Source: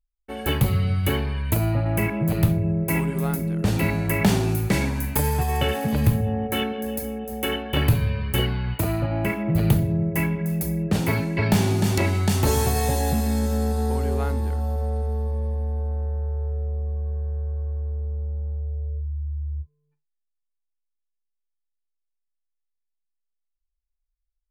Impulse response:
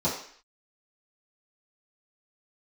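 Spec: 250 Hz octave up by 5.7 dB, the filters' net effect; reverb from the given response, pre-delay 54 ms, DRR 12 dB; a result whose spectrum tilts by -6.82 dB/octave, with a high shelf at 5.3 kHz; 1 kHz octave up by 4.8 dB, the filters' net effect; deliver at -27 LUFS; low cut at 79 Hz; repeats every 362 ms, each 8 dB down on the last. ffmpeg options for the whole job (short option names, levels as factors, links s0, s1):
-filter_complex "[0:a]highpass=79,equalizer=f=250:t=o:g=8,equalizer=f=1000:t=o:g=6,highshelf=f=5300:g=-6.5,aecho=1:1:362|724|1086|1448|1810:0.398|0.159|0.0637|0.0255|0.0102,asplit=2[s0][s1];[1:a]atrim=start_sample=2205,adelay=54[s2];[s1][s2]afir=irnorm=-1:irlink=0,volume=0.0708[s3];[s0][s3]amix=inputs=2:normalize=0,volume=0.398"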